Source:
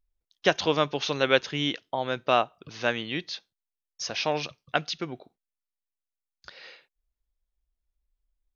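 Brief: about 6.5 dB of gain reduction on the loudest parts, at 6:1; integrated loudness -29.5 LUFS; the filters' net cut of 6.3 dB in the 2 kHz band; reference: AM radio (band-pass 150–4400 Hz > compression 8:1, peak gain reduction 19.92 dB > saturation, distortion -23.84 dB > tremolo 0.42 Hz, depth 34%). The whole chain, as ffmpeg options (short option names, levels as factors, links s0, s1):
-af "equalizer=f=2000:t=o:g=-9,acompressor=threshold=0.0631:ratio=6,highpass=150,lowpass=4400,acompressor=threshold=0.00708:ratio=8,asoftclip=threshold=0.0335,tremolo=f=0.42:d=0.34,volume=10.6"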